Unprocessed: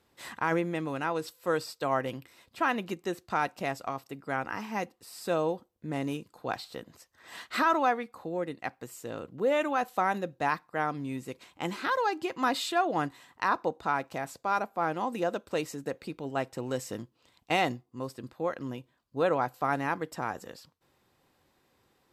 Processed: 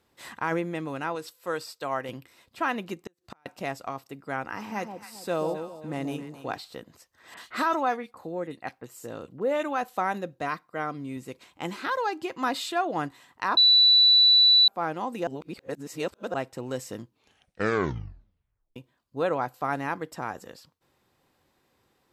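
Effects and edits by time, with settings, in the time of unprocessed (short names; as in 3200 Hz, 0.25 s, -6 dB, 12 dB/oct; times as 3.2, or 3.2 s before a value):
1.15–2.09 low shelf 480 Hz -6 dB
3.04–3.46 flipped gate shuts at -24 dBFS, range -38 dB
4.47–6.58 echo with dull and thin repeats by turns 0.134 s, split 930 Hz, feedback 59%, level -6.5 dB
7.34–9.63 bands offset in time lows, highs 30 ms, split 2600 Hz
10.42–11.17 notch comb 860 Hz
13.57–14.68 bleep 3960 Hz -14 dBFS
15.27–16.34 reverse
17.02 tape stop 1.74 s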